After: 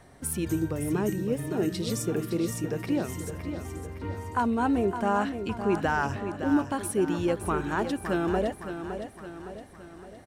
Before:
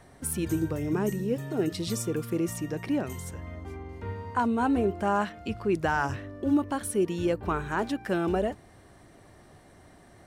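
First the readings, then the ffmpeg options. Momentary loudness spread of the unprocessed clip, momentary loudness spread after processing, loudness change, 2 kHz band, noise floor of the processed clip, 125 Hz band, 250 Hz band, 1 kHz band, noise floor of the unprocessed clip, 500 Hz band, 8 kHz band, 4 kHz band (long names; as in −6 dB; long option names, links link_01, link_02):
12 LU, 12 LU, 0.0 dB, +0.5 dB, −48 dBFS, +0.5 dB, +0.5 dB, +0.5 dB, −54 dBFS, +0.5 dB, +0.5 dB, +0.5 dB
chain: -af "aecho=1:1:563|1126|1689|2252|2815|3378:0.355|0.181|0.0923|0.0471|0.024|0.0122"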